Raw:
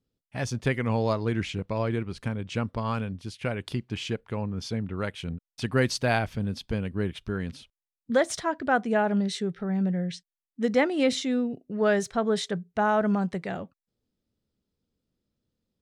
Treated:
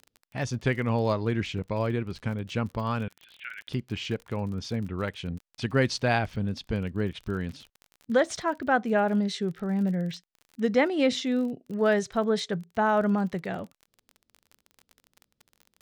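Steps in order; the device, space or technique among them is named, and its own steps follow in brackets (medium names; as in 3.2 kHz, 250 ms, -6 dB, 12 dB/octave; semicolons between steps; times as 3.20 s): 3.08–3.69 s: elliptic band-pass 1.5–3.5 kHz, stop band 40 dB; lo-fi chain (low-pass 6.7 kHz 12 dB/octave; wow and flutter; crackle 39 per s -37 dBFS)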